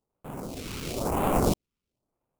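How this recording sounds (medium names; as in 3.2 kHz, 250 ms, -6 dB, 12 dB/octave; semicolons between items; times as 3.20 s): aliases and images of a low sample rate 1.8 kHz, jitter 20%; phasing stages 2, 1 Hz, lowest notch 650–4800 Hz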